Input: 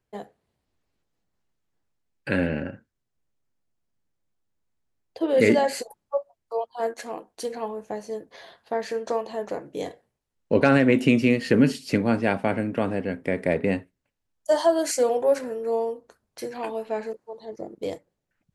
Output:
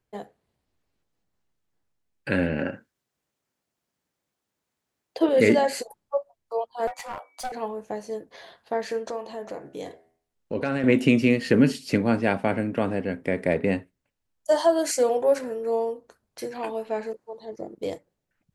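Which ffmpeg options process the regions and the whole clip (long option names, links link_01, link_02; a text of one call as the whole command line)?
ffmpeg -i in.wav -filter_complex "[0:a]asettb=1/sr,asplit=3[link_01][link_02][link_03];[link_01]atrim=end=2.594[link_04];[link_02]atrim=start=2.59:end=5.29,asetpts=PTS-STARTPTS,afade=type=in:duration=0.004:curve=qsin,afade=type=out:start_time=2.696:duration=0.004:curve=qsin,highpass=frequency=300:poles=1,acontrast=79[link_05];[link_03]atrim=start=5.286[link_06];[link_04][link_05]acrossfade=duration=0.004:curve1=hsin:curve2=qsin[link_07];[link_07][link_06]acrossfade=duration=0.004:curve1=qsin:curve2=hsin,asettb=1/sr,asplit=3[link_08][link_09][link_10];[link_08]atrim=end=6.874[link_11];[link_09]atrim=start=6.87:end=7.52,asetpts=PTS-STARTPTS,afade=type=in:duration=0.004:curve=qsin,afade=type=out:start_time=0.646:duration=0.004:curve=qsin,aeval=exprs='val(0)+0.000891*sin(2*PI*2000*n/s)':channel_layout=same,afreqshift=280,aeval=exprs='clip(val(0),-1,0.0211)':channel_layout=same[link_12];[link_10]atrim=start=7.516[link_13];[link_11][link_12]acrossfade=duration=0.004:curve1=hsin:curve2=qsin[link_14];[link_14][link_13]acrossfade=duration=0.004:curve1=qsin:curve2=hsin,asettb=1/sr,asplit=3[link_15][link_16][link_17];[link_15]atrim=end=9.094[link_18];[link_16]atrim=start=9.09:end=10.84,asetpts=PTS-STARTPTS,afade=type=in:duration=0.004:curve=qsin,afade=type=out:start_time=1.746:duration=0.004:curve=qsin,acompressor=threshold=-37dB:ratio=1.5:attack=3.2:release=140:knee=1:detection=peak,bandreject=frequency=81.93:width_type=h:width=4,bandreject=frequency=163.86:width_type=h:width=4,bandreject=frequency=245.79:width_type=h:width=4,bandreject=frequency=327.72:width_type=h:width=4,bandreject=frequency=409.65:width_type=h:width=4,bandreject=frequency=491.58:width_type=h:width=4,bandreject=frequency=573.51:width_type=h:width=4,bandreject=frequency=655.44:width_type=h:width=4,bandreject=frequency=737.37:width_type=h:width=4,bandreject=frequency=819.3:width_type=h:width=4,bandreject=frequency=901.23:width_type=h:width=4,bandreject=frequency=983.16:width_type=h:width=4,bandreject=frequency=1065.09:width_type=h:width=4,bandreject=frequency=1147.02:width_type=h:width=4,bandreject=frequency=1228.95:width_type=h:width=4,bandreject=frequency=1310.88:width_type=h:width=4,bandreject=frequency=1392.81:width_type=h:width=4,bandreject=frequency=1474.74:width_type=h:width=4,bandreject=frequency=1556.67:width_type=h:width=4,bandreject=frequency=1638.6:width_type=h:width=4,bandreject=frequency=1720.53:width_type=h:width=4,bandreject=frequency=1802.46:width_type=h:width=4,bandreject=frequency=1884.39:width_type=h:width=4,bandreject=frequency=1966.32:width_type=h:width=4,bandreject=frequency=2048.25:width_type=h:width=4,bandreject=frequency=2130.18:width_type=h:width=4,bandreject=frequency=2212.11:width_type=h:width=4,bandreject=frequency=2294.04:width_type=h:width=4,bandreject=frequency=2375.97:width_type=h:width=4,bandreject=frequency=2457.9:width_type=h:width=4[link_19];[link_17]atrim=start=10.836[link_20];[link_18][link_19]acrossfade=duration=0.004:curve1=hsin:curve2=qsin[link_21];[link_21][link_20]acrossfade=duration=0.004:curve1=qsin:curve2=hsin" out.wav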